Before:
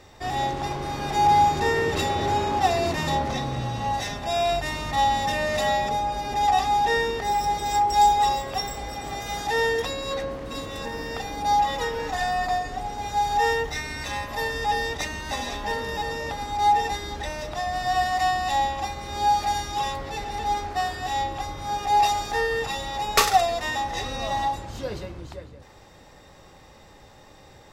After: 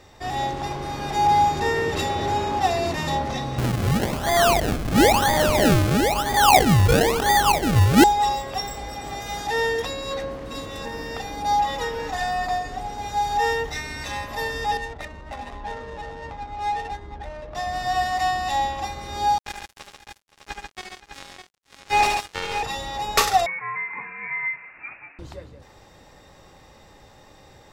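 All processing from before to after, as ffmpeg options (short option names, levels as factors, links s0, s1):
-filter_complex "[0:a]asettb=1/sr,asplit=3[s0][s1][s2];[s0]atrim=end=3.584[s3];[s1]atrim=start=3.58:end=8.04,asetpts=PTS-STARTPTS,afade=t=in:d=0.004:c=qsin,afade=t=out:st=4.456:d=0.004:c=qsin,acrusher=samples=32:mix=1:aa=0.000001:lfo=1:lforange=32:lforate=1,acontrast=47[s4];[s2]atrim=start=8.036[s5];[s3][s4]acrossfade=d=0.004:c1=hsin:c2=qsin[s6];[s6][s5]acrossfade=d=0.004:c1=qsin:c2=hsin,asettb=1/sr,asplit=3[s7][s8][s9];[s7]atrim=end=14.774[s10];[s8]atrim=start=14.77:end=17.55,asetpts=PTS-STARTPTS,afade=t=in:d=0.004:c=qsin,afade=t=out:st=2.776:d=0.004:c=qsin,flanger=delay=0.9:depth=1:regen=56:speed=1.3:shape=triangular,adynamicsmooth=sensitivity=4.5:basefreq=650[s11];[s9]atrim=start=17.546[s12];[s10][s11]acrossfade=d=0.004:c1=hsin:c2=qsin[s13];[s13][s12]acrossfade=d=0.004:c1=qsin:c2=hsin,asettb=1/sr,asplit=3[s14][s15][s16];[s14]atrim=end=19.384[s17];[s15]atrim=start=19.38:end=22.63,asetpts=PTS-STARTPTS,afade=t=in:d=0.004:c=qsin,afade=t=out:st=3.246:d=0.004:c=qsin,highshelf=f=6700:g=-7,acrusher=bits=2:mix=0:aa=0.5,aecho=1:1:72|77|138|521|606:0.422|0.422|0.596|0.141|0.398,atrim=end_sample=143325[s18];[s16]atrim=start=22.626[s19];[s17][s18]acrossfade=d=0.004:c1=hsin:c2=qsin[s20];[s20][s19]acrossfade=d=0.004:c1=qsin:c2=hsin,asettb=1/sr,asplit=3[s21][s22][s23];[s21]atrim=end=23.464[s24];[s22]atrim=start=23.46:end=25.19,asetpts=PTS-STARTPTS,afade=t=in:d=0.004:c=qsin,afade=t=out:st=1.726:d=0.004:c=qsin,highpass=710,lowpass=f=2500:t=q:w=0.5098,lowpass=f=2500:t=q:w=0.6013,lowpass=f=2500:t=q:w=0.9,lowpass=f=2500:t=q:w=2.563,afreqshift=-2900[s25];[s23]atrim=start=25.186[s26];[s24][s25]acrossfade=d=0.004:c1=hsin:c2=qsin[s27];[s27][s26]acrossfade=d=0.004:c1=qsin:c2=hsin"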